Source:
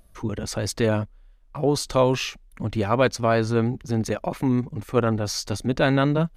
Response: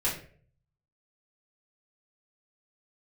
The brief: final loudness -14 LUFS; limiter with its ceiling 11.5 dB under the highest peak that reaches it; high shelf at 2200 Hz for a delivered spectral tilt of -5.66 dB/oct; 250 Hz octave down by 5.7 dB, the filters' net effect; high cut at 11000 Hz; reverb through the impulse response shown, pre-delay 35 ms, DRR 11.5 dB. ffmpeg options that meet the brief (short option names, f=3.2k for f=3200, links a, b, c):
-filter_complex "[0:a]lowpass=11k,equalizer=f=250:t=o:g=-7,highshelf=f=2.2k:g=-8,alimiter=limit=-21.5dB:level=0:latency=1,asplit=2[a][b];[1:a]atrim=start_sample=2205,adelay=35[c];[b][c]afir=irnorm=-1:irlink=0,volume=-19.5dB[d];[a][d]amix=inputs=2:normalize=0,volume=18.5dB"